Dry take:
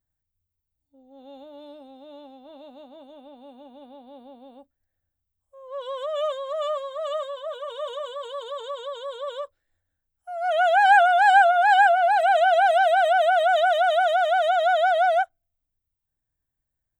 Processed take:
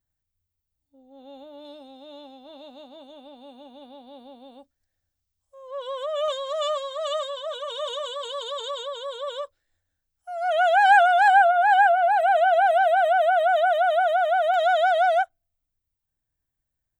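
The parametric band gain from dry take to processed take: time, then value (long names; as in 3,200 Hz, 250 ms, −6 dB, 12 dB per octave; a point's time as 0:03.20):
parametric band 5,300 Hz 1.7 octaves
+2.5 dB
from 0:01.65 +10 dB
from 0:05.71 +2.5 dB
from 0:06.28 +13 dB
from 0:08.83 +6.5 dB
from 0:10.44 +0.5 dB
from 0:11.28 −9.5 dB
from 0:14.54 +1 dB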